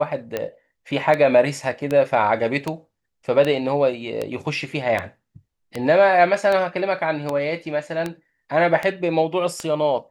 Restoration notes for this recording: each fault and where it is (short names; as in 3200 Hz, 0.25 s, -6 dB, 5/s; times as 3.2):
tick 78 rpm -11 dBFS